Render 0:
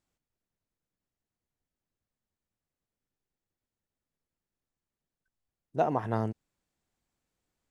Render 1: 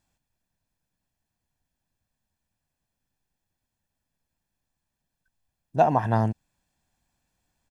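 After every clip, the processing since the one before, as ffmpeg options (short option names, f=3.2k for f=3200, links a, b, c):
-af "aecho=1:1:1.2:0.51,volume=6dB"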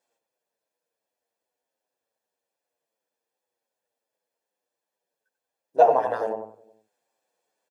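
-filter_complex "[0:a]highpass=f=480:t=q:w=4.9,asplit=2[a][b];[b]adelay=92,lowpass=f=1.1k:p=1,volume=-6dB,asplit=2[c][d];[d]adelay=92,lowpass=f=1.1k:p=1,volume=0.51,asplit=2[e][f];[f]adelay=92,lowpass=f=1.1k:p=1,volume=0.51,asplit=2[g][h];[h]adelay=92,lowpass=f=1.1k:p=1,volume=0.51,asplit=2[i][j];[j]adelay=92,lowpass=f=1.1k:p=1,volume=0.51,asplit=2[k][l];[l]adelay=92,lowpass=f=1.1k:p=1,volume=0.51[m];[c][e][g][i][k][m]amix=inputs=6:normalize=0[n];[a][n]amix=inputs=2:normalize=0,asplit=2[o][p];[p]adelay=7.8,afreqshift=-2.6[q];[o][q]amix=inputs=2:normalize=1"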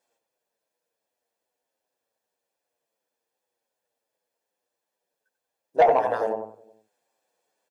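-af "asoftclip=type=tanh:threshold=-12dB,volume=2dB"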